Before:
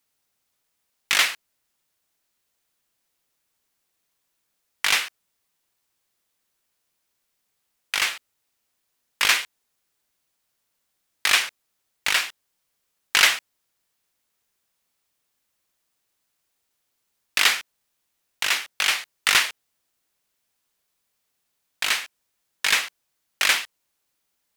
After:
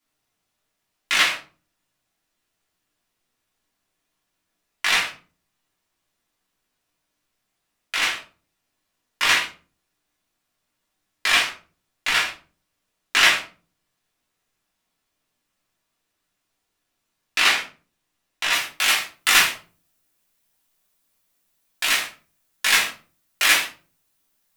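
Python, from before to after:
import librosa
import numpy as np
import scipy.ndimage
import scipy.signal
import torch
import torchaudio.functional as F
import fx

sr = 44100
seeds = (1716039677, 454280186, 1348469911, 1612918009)

y = fx.high_shelf(x, sr, hz=8700.0, db=fx.steps((0.0, -8.0), (18.52, 6.5)))
y = fx.room_shoebox(y, sr, seeds[0], volume_m3=220.0, walls='furnished', distance_m=3.1)
y = y * 10.0 ** (-3.5 / 20.0)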